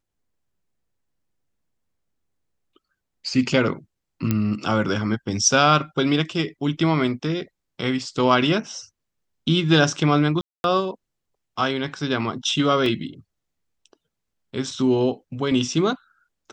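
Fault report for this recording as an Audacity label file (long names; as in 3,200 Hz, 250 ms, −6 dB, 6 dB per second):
4.310000	4.310000	click −8 dBFS
10.410000	10.640000	drop-out 231 ms
12.860000	12.860000	drop-out 2.3 ms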